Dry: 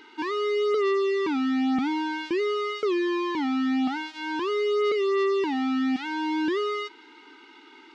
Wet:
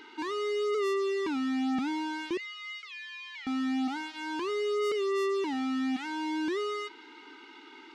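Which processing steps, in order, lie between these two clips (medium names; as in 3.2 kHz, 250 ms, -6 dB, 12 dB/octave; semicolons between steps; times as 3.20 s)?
2.37–3.47 s: ladder high-pass 1.8 kHz, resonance 45%; saturation -27.5 dBFS, distortion -18 dB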